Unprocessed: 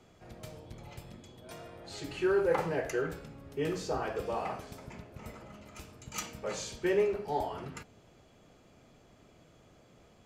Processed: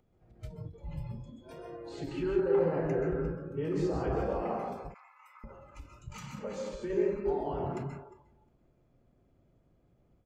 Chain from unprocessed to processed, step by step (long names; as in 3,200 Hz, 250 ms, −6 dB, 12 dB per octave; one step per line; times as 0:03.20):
brickwall limiter −28 dBFS, peak gain reduction 10.5 dB
spectral tilt −3 dB per octave
upward compression, threshold −51 dBFS
0:02.56–0:03.19: high-shelf EQ 7,600 Hz → 4,300 Hz −11 dB
convolution reverb RT60 0.60 s, pre-delay 122 ms, DRR 0.5 dB
0:06.36–0:06.90: downward compressor, threshold −31 dBFS, peak gain reduction 4.5 dB
repeating echo 355 ms, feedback 32%, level −13.5 dB
noise reduction from a noise print of the clip's start 16 dB
0:04.94–0:05.44: Butterworth high-pass 1,000 Hz 36 dB per octave
every ending faded ahead of time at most 170 dB per second
level −2 dB